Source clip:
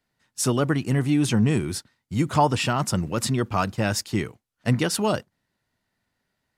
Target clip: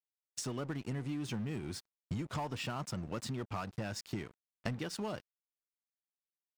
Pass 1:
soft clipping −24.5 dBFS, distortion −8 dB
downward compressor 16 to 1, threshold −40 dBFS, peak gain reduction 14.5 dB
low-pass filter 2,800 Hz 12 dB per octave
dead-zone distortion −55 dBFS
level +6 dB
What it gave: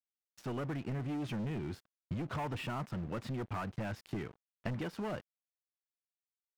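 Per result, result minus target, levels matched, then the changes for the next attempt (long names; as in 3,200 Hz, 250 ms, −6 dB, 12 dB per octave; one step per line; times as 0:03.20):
8,000 Hz band −14.0 dB; soft clipping: distortion +8 dB
change: low-pass filter 6,900 Hz 12 dB per octave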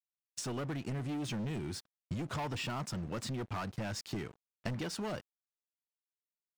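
soft clipping: distortion +8 dB
change: soft clipping −16 dBFS, distortion −15 dB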